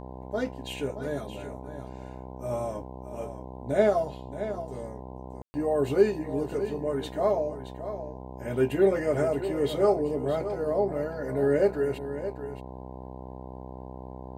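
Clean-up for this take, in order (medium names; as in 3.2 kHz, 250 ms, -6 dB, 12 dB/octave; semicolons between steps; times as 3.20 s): de-hum 63.9 Hz, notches 16; room tone fill 5.42–5.54 s; inverse comb 623 ms -11 dB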